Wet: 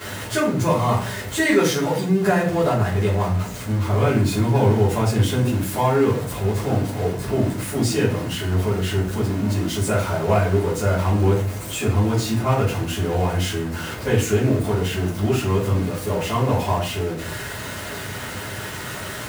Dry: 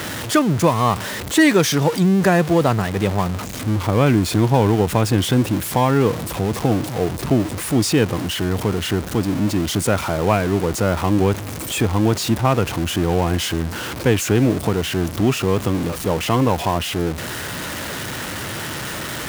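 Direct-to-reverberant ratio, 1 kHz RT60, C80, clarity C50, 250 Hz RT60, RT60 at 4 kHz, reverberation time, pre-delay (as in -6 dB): -11.5 dB, 0.40 s, 10.0 dB, 6.0 dB, 0.65 s, 0.35 s, 0.45 s, 5 ms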